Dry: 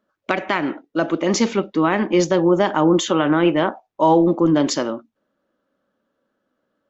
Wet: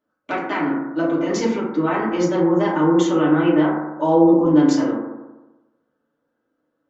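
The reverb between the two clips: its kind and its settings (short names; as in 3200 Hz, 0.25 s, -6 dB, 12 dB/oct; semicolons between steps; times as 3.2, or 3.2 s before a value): FDN reverb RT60 1.1 s, low-frequency decay 1×, high-frequency decay 0.25×, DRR -7.5 dB; gain -10.5 dB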